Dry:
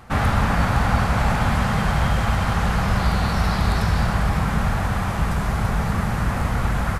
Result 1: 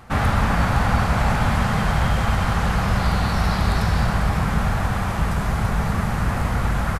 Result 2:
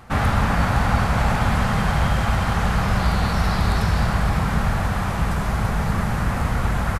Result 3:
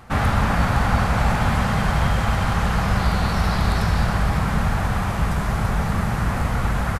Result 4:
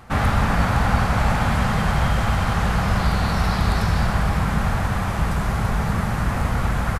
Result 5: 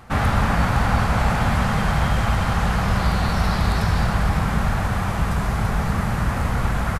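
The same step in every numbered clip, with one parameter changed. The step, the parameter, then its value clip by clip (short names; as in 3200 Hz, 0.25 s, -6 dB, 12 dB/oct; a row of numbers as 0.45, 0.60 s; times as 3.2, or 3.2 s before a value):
frequency-shifting echo, time: 139, 522, 313, 83, 207 ms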